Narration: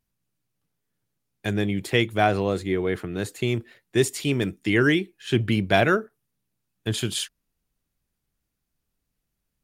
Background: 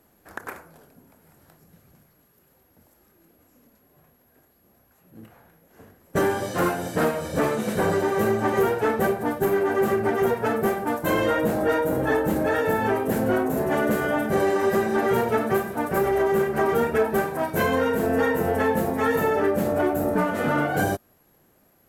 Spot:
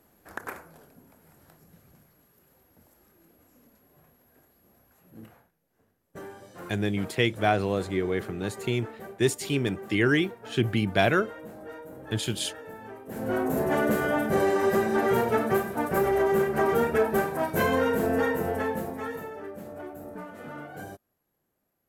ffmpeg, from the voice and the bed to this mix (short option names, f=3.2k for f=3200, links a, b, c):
-filter_complex "[0:a]adelay=5250,volume=-3dB[a];[1:a]volume=16.5dB,afade=t=out:st=5.29:d=0.22:silence=0.11885,afade=t=in:st=13.06:d=0.45:silence=0.125893,afade=t=out:st=17.97:d=1.33:silence=0.16788[b];[a][b]amix=inputs=2:normalize=0"